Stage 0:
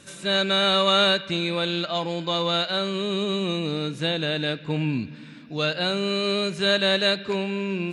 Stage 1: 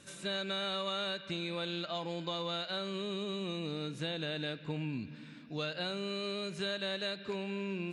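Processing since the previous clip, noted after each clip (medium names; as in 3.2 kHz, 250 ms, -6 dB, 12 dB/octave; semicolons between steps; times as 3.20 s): compression, threshold -26 dBFS, peak gain reduction 10 dB; trim -7.5 dB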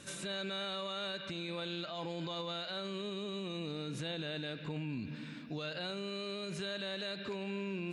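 peak limiter -36 dBFS, peak gain reduction 11.5 dB; trim +4.5 dB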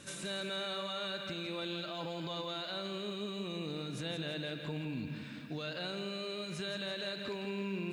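bit-crushed delay 167 ms, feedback 55%, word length 11-bit, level -8.5 dB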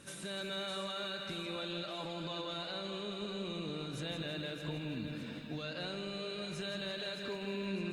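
on a send: two-band feedback delay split 450 Hz, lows 267 ms, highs 612 ms, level -9 dB; on the sum: trim -1.5 dB; Opus 32 kbps 48 kHz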